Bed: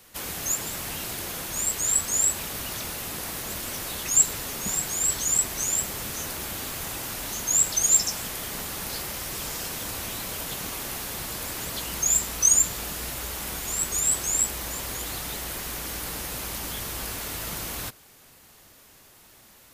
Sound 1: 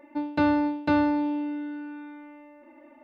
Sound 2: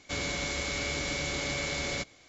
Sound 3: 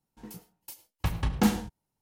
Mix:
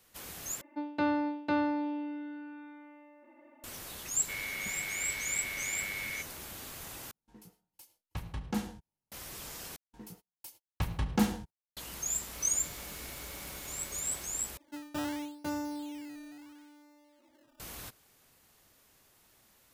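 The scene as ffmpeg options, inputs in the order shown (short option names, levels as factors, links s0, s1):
-filter_complex "[1:a]asplit=2[s0][s1];[2:a]asplit=2[s2][s3];[3:a]asplit=2[s4][s5];[0:a]volume=0.266[s6];[s0]highpass=f=240:p=1[s7];[s2]bandpass=f=2100:t=q:w=2.6:csg=0[s8];[s4]aresample=32000,aresample=44100[s9];[s5]agate=range=0.0355:threshold=0.00112:ratio=16:release=100:detection=peak[s10];[s3]aeval=exprs='val(0)*gte(abs(val(0)),0.0211)':c=same[s11];[s1]acrusher=samples=14:mix=1:aa=0.000001:lfo=1:lforange=14:lforate=0.75[s12];[s6]asplit=5[s13][s14][s15][s16][s17];[s13]atrim=end=0.614[s18];[s7]atrim=end=3.03,asetpts=PTS-STARTPTS,volume=0.531[s19];[s14]atrim=start=3.636:end=7.114[s20];[s9]atrim=end=2.01,asetpts=PTS-STARTPTS,volume=0.299[s21];[s15]atrim=start=9.116:end=9.764[s22];[s10]atrim=end=2.01,asetpts=PTS-STARTPTS,volume=0.631[s23];[s16]atrim=start=11.766:end=14.574[s24];[s12]atrim=end=3.03,asetpts=PTS-STARTPTS,volume=0.211[s25];[s17]atrim=start=17.596[s26];[s8]atrim=end=2.28,asetpts=PTS-STARTPTS,volume=0.944,afade=t=in:d=0.004:c=hsin,afade=t=out:st=2.276:d=0.004:c=hsin,adelay=4190[s27];[s11]atrim=end=2.28,asetpts=PTS-STARTPTS,volume=0.133,afade=t=in:d=0.004:c=hsin,afade=t=out:st=2.276:d=0.004:c=hsin,adelay=12230[s28];[s18][s19]acrossfade=d=0.004:c1=hsin:c2=hsin[s29];[s29][s20]acrossfade=d=0.004:c1=hsin:c2=hsin[s30];[s30][s21]acrossfade=d=0.004:c1=hsin:c2=hsin[s31];[s31][s22]acrossfade=d=0.004:c1=hsin:c2=hsin[s32];[s32][s23]acrossfade=d=0.004:c1=hsin:c2=hsin[s33];[s33][s24]acrossfade=d=0.004:c1=hsin:c2=hsin[s34];[s34][s25]acrossfade=d=0.004:c1=hsin:c2=hsin[s35];[s35][s26]acrossfade=d=0.004:c1=hsin:c2=hsin[s36];[s36][s27][s28]amix=inputs=3:normalize=0"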